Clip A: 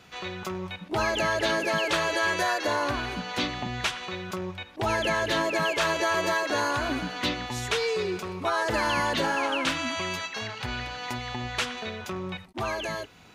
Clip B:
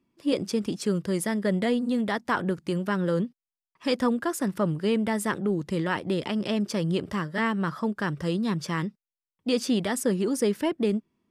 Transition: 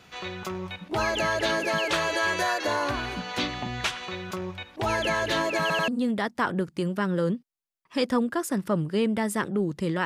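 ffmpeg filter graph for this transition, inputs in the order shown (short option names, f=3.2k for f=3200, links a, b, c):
-filter_complex "[0:a]apad=whole_dur=10.05,atrim=end=10.05,asplit=3[a][b][c];[a]atrim=end=5.702[d];[b]atrim=start=5.608:end=5.702[e];[c]atrim=start=5.608:end=5.702[f];[1:a]atrim=start=1.778:end=5.95[g];[d][e]acrossfade=d=0.004:c1=hsin:c2=hsin[h];[h][f]acrossfade=d=0.004:c1=hsin:c2=hsin[i];[i][g]acrossfade=d=0.004:c1=hsin:c2=hsin"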